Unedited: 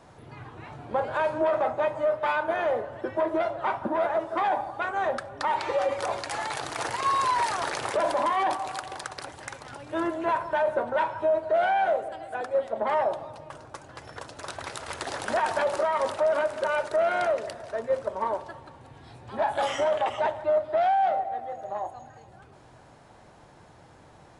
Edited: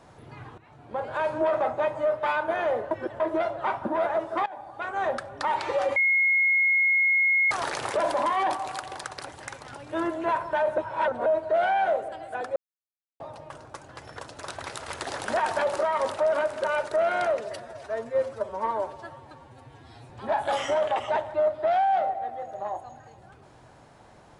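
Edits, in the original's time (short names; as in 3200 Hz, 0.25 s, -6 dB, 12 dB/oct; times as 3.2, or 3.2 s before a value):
0.58–1.35 fade in, from -15.5 dB
2.91–3.2 reverse
4.46–5.04 fade in, from -22 dB
5.96–7.51 bleep 2160 Hz -18.5 dBFS
10.78–11.26 reverse
12.56–13.2 mute
17.4–19.2 stretch 1.5×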